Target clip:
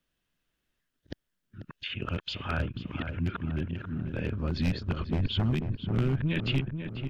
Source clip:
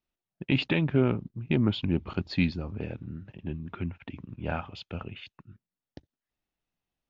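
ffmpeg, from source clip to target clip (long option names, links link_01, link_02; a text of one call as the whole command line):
ffmpeg -i in.wav -filter_complex "[0:a]areverse,equalizer=frequency=800:width_type=o:width=0.33:gain=-9,equalizer=frequency=1600:width_type=o:width=0.33:gain=7,equalizer=frequency=3150:width_type=o:width=0.33:gain=5,acrossover=split=130[link_01][link_02];[link_02]acompressor=threshold=-36dB:ratio=8[link_03];[link_01][link_03]amix=inputs=2:normalize=0,asubboost=boost=3:cutoff=53,aeval=exprs='0.0473*(abs(mod(val(0)/0.0473+3,4)-2)-1)':channel_layout=same,asplit=2[link_04][link_05];[link_05]adelay=490,lowpass=frequency=1700:poles=1,volume=-7dB,asplit=2[link_06][link_07];[link_07]adelay=490,lowpass=frequency=1700:poles=1,volume=0.52,asplit=2[link_08][link_09];[link_09]adelay=490,lowpass=frequency=1700:poles=1,volume=0.52,asplit=2[link_10][link_11];[link_11]adelay=490,lowpass=frequency=1700:poles=1,volume=0.52,asplit=2[link_12][link_13];[link_13]adelay=490,lowpass=frequency=1700:poles=1,volume=0.52,asplit=2[link_14][link_15];[link_15]adelay=490,lowpass=frequency=1700:poles=1,volume=0.52[link_16];[link_06][link_08][link_10][link_12][link_14][link_16]amix=inputs=6:normalize=0[link_17];[link_04][link_17]amix=inputs=2:normalize=0,volume=6.5dB" out.wav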